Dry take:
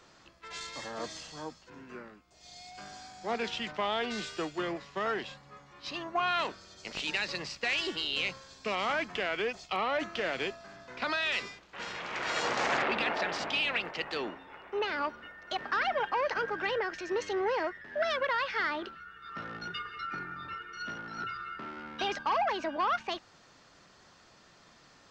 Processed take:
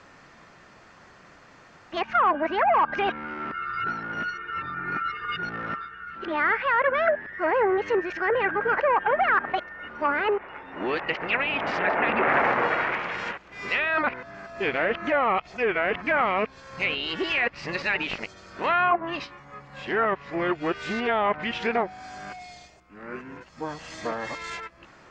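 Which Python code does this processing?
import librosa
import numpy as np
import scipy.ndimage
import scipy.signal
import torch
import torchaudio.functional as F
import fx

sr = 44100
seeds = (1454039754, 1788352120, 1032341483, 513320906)

y = x[::-1].copy()
y = fx.high_shelf_res(y, sr, hz=2900.0, db=-7.0, q=1.5)
y = fx.env_lowpass_down(y, sr, base_hz=2200.0, full_db=-27.5)
y = F.gain(torch.from_numpy(y), 8.0).numpy()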